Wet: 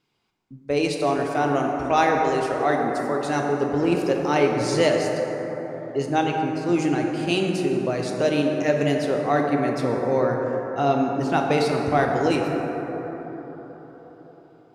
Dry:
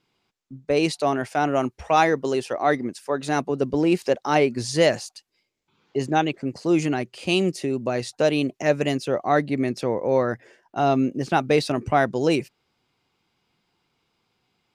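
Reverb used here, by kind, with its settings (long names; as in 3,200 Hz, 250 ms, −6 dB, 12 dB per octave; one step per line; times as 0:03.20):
dense smooth reverb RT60 4.6 s, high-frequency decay 0.3×, pre-delay 0 ms, DRR 0.5 dB
level −2.5 dB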